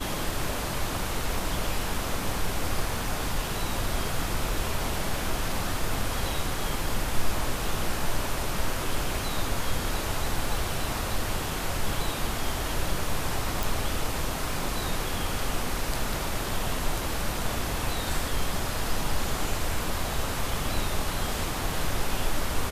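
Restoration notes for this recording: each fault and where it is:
13.63 pop

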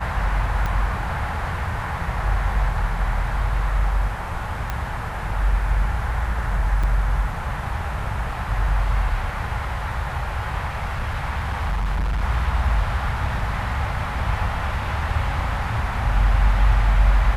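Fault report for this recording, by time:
0.66 pop -13 dBFS
4.7 pop -12 dBFS
6.83–6.84 gap 5.6 ms
10.75–12.23 clipped -19.5 dBFS

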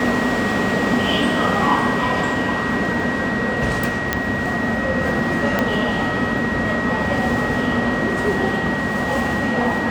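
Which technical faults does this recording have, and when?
tone 1900 Hz -24 dBFS
4.13 pop -3 dBFS
5.59 pop -5 dBFS

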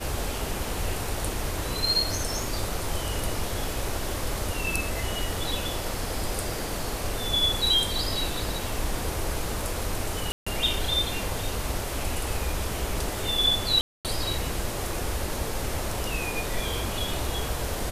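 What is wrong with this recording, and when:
10.32–10.46 gap 0.145 s
13.81–14.05 gap 0.238 s

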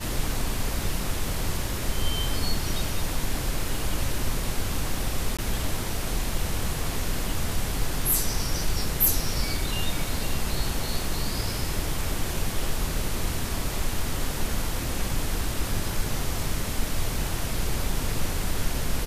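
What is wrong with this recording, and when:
5.37–5.39 gap 16 ms

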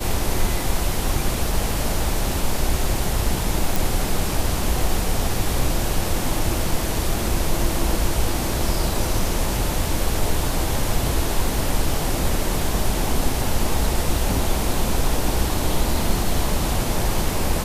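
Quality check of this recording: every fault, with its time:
3.76 pop

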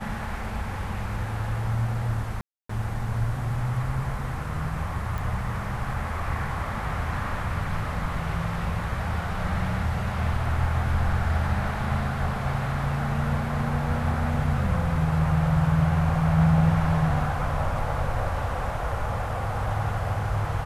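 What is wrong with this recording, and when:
2.41–2.69 gap 0.284 s
5.18 pop

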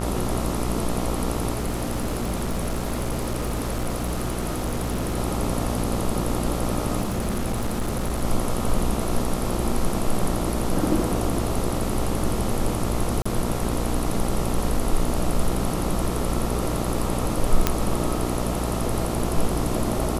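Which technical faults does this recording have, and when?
buzz 60 Hz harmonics 23 -28 dBFS
1.53–5.19 clipped -21.5 dBFS
7.01–8.24 clipped -21 dBFS
13.22–13.26 gap 35 ms
17.67 pop -3 dBFS

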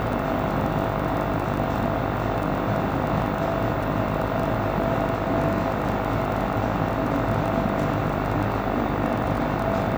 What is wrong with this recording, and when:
buzz 50 Hz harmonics 29 -29 dBFS
crackle 20/s -27 dBFS

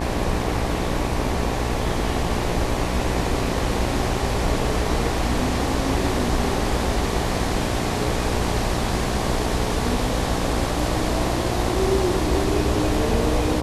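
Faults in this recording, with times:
buzz 60 Hz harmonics 19 -27 dBFS

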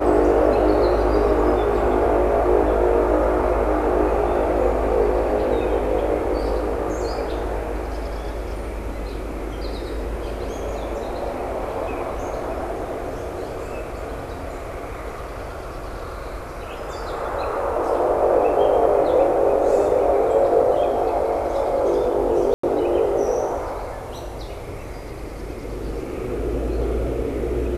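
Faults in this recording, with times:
22.54–22.63 gap 94 ms

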